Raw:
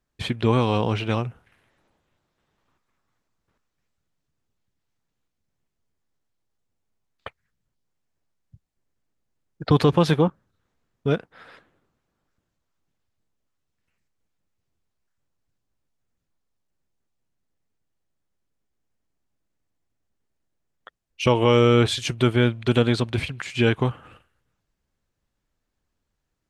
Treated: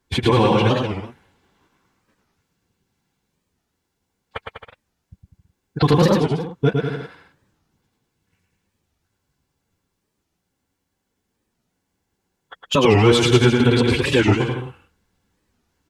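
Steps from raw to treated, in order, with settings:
in parallel at 0 dB: downward compressor 16 to 1, threshold −28 dBFS, peak gain reduction 17 dB
on the sum: multi-voice chorus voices 4, 0.86 Hz, delay 13 ms, depth 2.7 ms
phase-vocoder stretch with locked phases 0.6×
notch comb filter 620 Hz
hard clipping −11 dBFS, distortion −25 dB
brickwall limiter −15 dBFS, peak gain reduction 4 dB
on a send: bouncing-ball delay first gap 110 ms, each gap 0.8×, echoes 5
on the sum: wow of a warped record 45 rpm, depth 250 cents
level +8.5 dB

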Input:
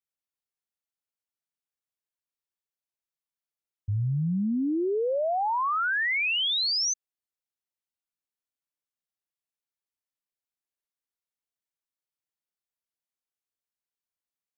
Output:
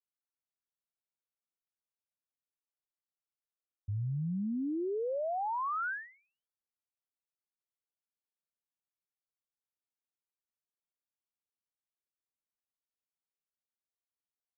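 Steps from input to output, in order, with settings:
Butterworth low-pass 1,600 Hz 72 dB per octave
level −7.5 dB

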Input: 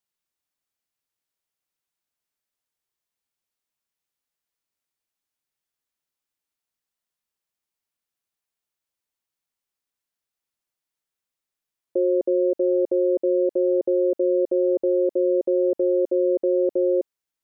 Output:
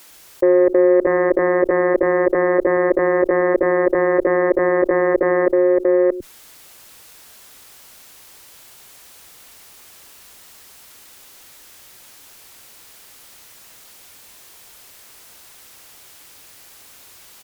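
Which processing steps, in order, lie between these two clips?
played backwards from end to start
multiband delay without the direct sound highs, lows 100 ms, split 180 Hz
harmonic generator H 2 −17 dB, 4 −21 dB, 5 −41 dB, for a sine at −14 dBFS
on a send: single-tap delay 624 ms −3.5 dB
on the sum: envelope flattener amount 50%
level +7.5 dB

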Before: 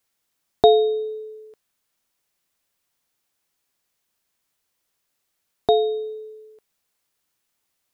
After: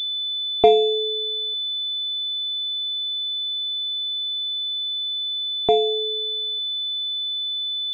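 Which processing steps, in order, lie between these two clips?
four-comb reverb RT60 0.43 s, combs from 29 ms, DRR 19.5 dB
switching amplifier with a slow clock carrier 3,500 Hz

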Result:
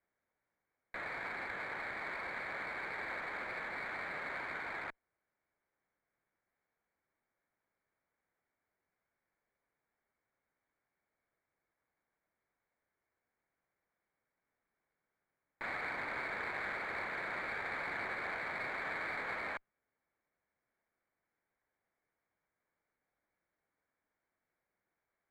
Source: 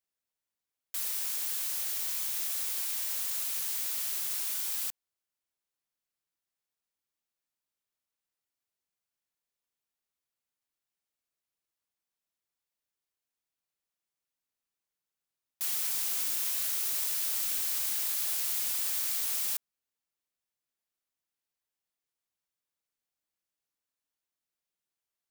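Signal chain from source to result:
Chebyshev low-pass with heavy ripple 2,300 Hz, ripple 3 dB
windowed peak hold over 3 samples
level +12.5 dB

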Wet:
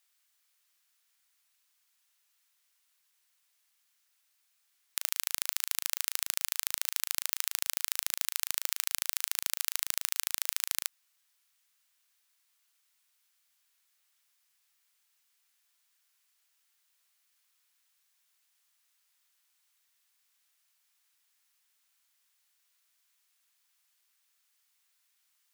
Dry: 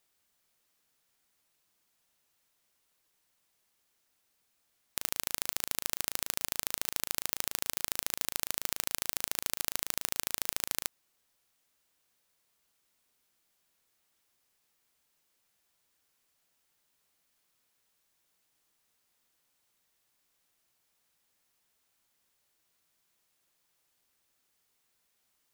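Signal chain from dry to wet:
high-pass filter 1,300 Hz 12 dB per octave
level +2 dB

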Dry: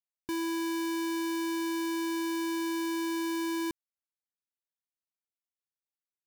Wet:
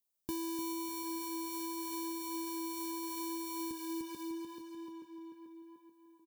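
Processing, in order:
tape delay 437 ms, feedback 58%, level −7 dB, low-pass 3,000 Hz
brickwall limiter −33.5 dBFS, peak gain reduction 6.5 dB
high-shelf EQ 10,000 Hz +10 dB
on a send: repeating echo 300 ms, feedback 31%, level −4 dB
on the sum: downward compressor 3 to 1, threshold −44 dBFS, peak gain reduction 10 dB
parametric band 1,800 Hz −12 dB 1.1 octaves
double-tracking delay 13 ms −9.5 dB
level +5 dB

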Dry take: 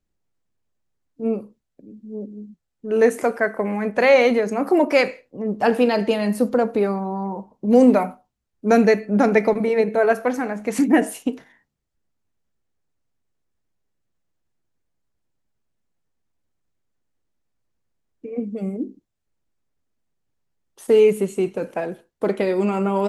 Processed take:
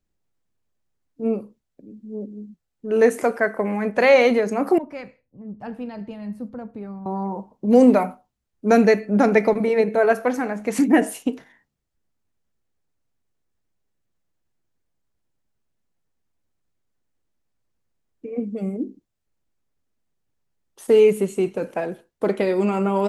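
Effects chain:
0:04.78–0:07.06: drawn EQ curve 110 Hz 0 dB, 440 Hz −20 dB, 900 Hz −16 dB, 10,000 Hz −26 dB

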